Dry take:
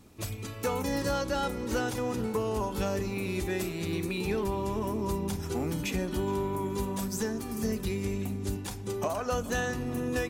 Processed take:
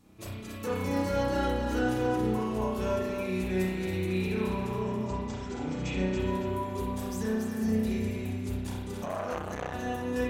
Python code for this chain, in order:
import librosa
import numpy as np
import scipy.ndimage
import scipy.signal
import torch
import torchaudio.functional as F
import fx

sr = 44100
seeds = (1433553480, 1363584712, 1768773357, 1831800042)

y = fx.brickwall_lowpass(x, sr, high_hz=8200.0, at=(4.8, 6.2))
y = fx.echo_feedback(y, sr, ms=278, feedback_pct=30, wet_db=-6.5)
y = fx.rev_spring(y, sr, rt60_s=1.0, pass_ms=(32,), chirp_ms=25, drr_db=-5.5)
y = fx.transformer_sat(y, sr, knee_hz=1000.0, at=(9.05, 9.74))
y = F.gain(torch.from_numpy(y), -7.5).numpy()